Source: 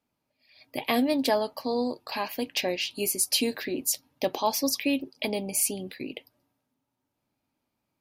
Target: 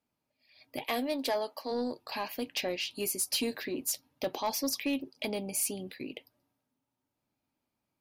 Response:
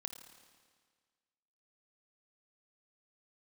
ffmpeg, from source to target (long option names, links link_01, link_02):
-filter_complex "[0:a]asplit=3[link_01][link_02][link_03];[link_01]afade=type=out:start_time=0.84:duration=0.02[link_04];[link_02]highpass=330,afade=type=in:start_time=0.84:duration=0.02,afade=type=out:start_time=1.7:duration=0.02[link_05];[link_03]afade=type=in:start_time=1.7:duration=0.02[link_06];[link_04][link_05][link_06]amix=inputs=3:normalize=0,asoftclip=type=tanh:threshold=-18.5dB,volume=-4dB"